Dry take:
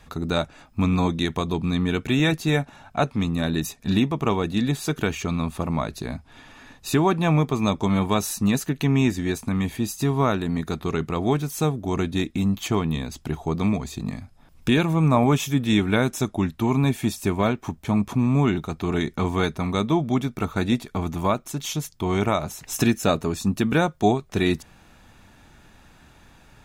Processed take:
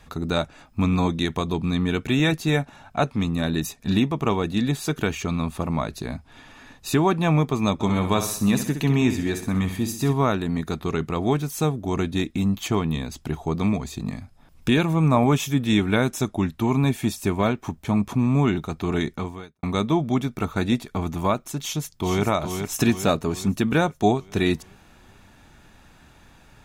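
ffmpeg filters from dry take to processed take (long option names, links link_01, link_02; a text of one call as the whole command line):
ffmpeg -i in.wav -filter_complex "[0:a]asplit=3[link_01][link_02][link_03];[link_01]afade=type=out:start_time=7.79:duration=0.02[link_04];[link_02]aecho=1:1:64|128|192|256|320:0.355|0.167|0.0784|0.0368|0.0173,afade=type=in:start_time=7.79:duration=0.02,afade=type=out:start_time=10.12:duration=0.02[link_05];[link_03]afade=type=in:start_time=10.12:duration=0.02[link_06];[link_04][link_05][link_06]amix=inputs=3:normalize=0,asplit=2[link_07][link_08];[link_08]afade=type=in:start_time=21.58:duration=0.01,afade=type=out:start_time=22.25:duration=0.01,aecho=0:1:420|840|1260|1680|2100|2520|2940:0.473151|0.260233|0.143128|0.0787205|0.0432963|0.023813|0.0130971[link_09];[link_07][link_09]amix=inputs=2:normalize=0,asplit=2[link_10][link_11];[link_10]atrim=end=19.63,asetpts=PTS-STARTPTS,afade=type=out:start_time=19.08:duration=0.55:curve=qua[link_12];[link_11]atrim=start=19.63,asetpts=PTS-STARTPTS,afade=type=in:duration=0.004:curve=hsin[link_13];[link_12][link_13]concat=n=2:v=0:a=1" out.wav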